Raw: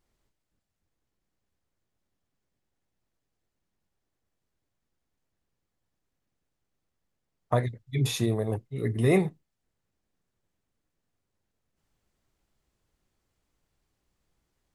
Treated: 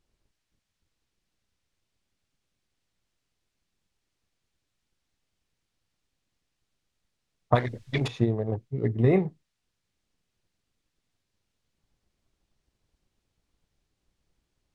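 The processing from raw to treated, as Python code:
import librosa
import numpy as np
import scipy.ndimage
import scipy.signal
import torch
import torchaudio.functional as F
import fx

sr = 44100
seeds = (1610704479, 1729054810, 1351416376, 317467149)

y = fx.wiener(x, sr, points=15)
y = fx.transient(y, sr, attack_db=7, sustain_db=-1)
y = fx.dmg_noise_colour(y, sr, seeds[0], colour='violet', level_db=-58.0)
y = fx.spacing_loss(y, sr, db_at_10k=29)
y = fx.spectral_comp(y, sr, ratio=2.0, at=(7.55, 8.08))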